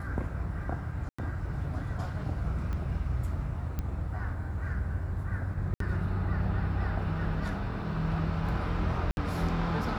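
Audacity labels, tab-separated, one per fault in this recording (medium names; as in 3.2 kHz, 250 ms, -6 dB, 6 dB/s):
1.090000	1.190000	dropout 95 ms
2.730000	2.730000	pop -25 dBFS
3.790000	3.790000	pop -20 dBFS
5.740000	5.800000	dropout 63 ms
9.110000	9.170000	dropout 61 ms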